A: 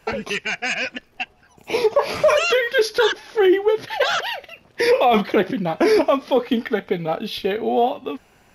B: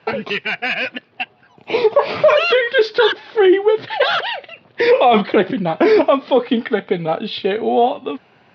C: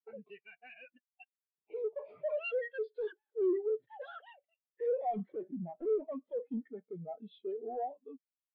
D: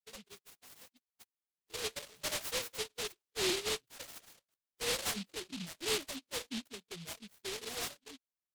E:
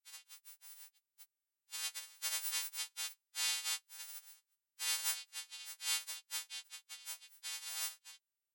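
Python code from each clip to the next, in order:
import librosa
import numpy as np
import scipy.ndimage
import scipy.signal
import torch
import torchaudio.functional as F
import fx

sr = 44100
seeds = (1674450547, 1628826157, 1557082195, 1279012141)

y1 = scipy.signal.sosfilt(scipy.signal.ellip(3, 1.0, 40, [110.0, 4000.0], 'bandpass', fs=sr, output='sos'), x)
y1 = y1 * librosa.db_to_amplitude(4.0)
y2 = 10.0 ** (-19.0 / 20.0) * np.tanh(y1 / 10.0 ** (-19.0 / 20.0))
y2 = fx.spectral_expand(y2, sr, expansion=2.5)
y2 = y2 * librosa.db_to_amplitude(-5.5)
y3 = fx.noise_mod_delay(y2, sr, seeds[0], noise_hz=3300.0, depth_ms=0.4)
y3 = y3 * librosa.db_to_amplitude(-3.0)
y4 = fx.freq_snap(y3, sr, grid_st=2)
y4 = scipy.signal.sosfilt(scipy.signal.ellip(4, 1.0, 70, 740.0, 'highpass', fs=sr, output='sos'), y4)
y4 = y4 * librosa.db_to_amplitude(-8.5)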